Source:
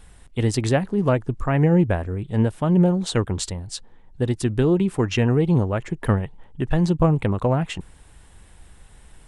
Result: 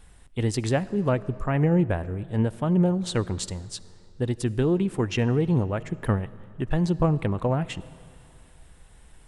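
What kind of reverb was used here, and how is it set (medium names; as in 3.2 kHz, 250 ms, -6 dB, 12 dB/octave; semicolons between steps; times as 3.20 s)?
algorithmic reverb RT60 2.6 s, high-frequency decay 0.8×, pre-delay 30 ms, DRR 18.5 dB; trim -4 dB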